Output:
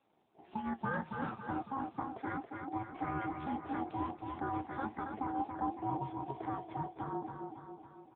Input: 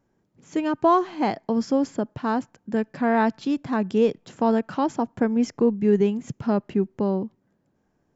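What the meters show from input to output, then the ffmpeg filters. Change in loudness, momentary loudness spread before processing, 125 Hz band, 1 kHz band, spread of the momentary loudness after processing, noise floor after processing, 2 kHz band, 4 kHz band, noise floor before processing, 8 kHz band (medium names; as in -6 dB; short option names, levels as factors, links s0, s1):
-15.5 dB, 8 LU, -11.0 dB, -10.0 dB, 5 LU, -63 dBFS, -10.0 dB, -19.5 dB, -70 dBFS, no reading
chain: -filter_complex "[0:a]bandreject=f=2000:w=6,asplit=2[s0][s1];[s1]alimiter=limit=0.0891:level=0:latency=1:release=294,volume=0.891[s2];[s0][s2]amix=inputs=2:normalize=0,adynamicequalizer=threshold=0.00708:dfrequency=130:dqfactor=6.3:tfrequency=130:tqfactor=6.3:attack=5:release=100:ratio=0.375:range=1.5:mode=cutabove:tftype=bell,acompressor=threshold=0.0158:ratio=2,bandreject=f=50:t=h:w=6,bandreject=f=100:t=h:w=6,bandreject=f=150:t=h:w=6,bandreject=f=200:t=h:w=6,aeval=exprs='val(0)*sin(2*PI*540*n/s)':c=same,flanger=delay=8.5:depth=4.5:regen=65:speed=1.4:shape=sinusoidal,aecho=1:1:277|554|831|1108|1385|1662|1939:0.531|0.292|0.161|0.0883|0.0486|0.0267|0.0147" -ar 8000 -c:a libopencore_amrnb -b:a 6700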